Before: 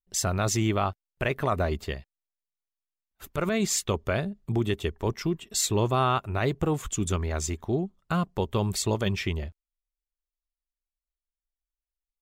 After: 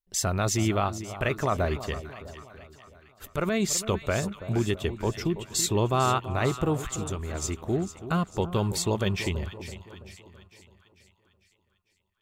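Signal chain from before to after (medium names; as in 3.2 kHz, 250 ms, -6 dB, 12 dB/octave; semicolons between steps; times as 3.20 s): 6.79–7.42 s: compression 3:1, threshold -31 dBFS, peak gain reduction 7 dB; two-band feedback delay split 1.1 kHz, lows 331 ms, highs 449 ms, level -12.5 dB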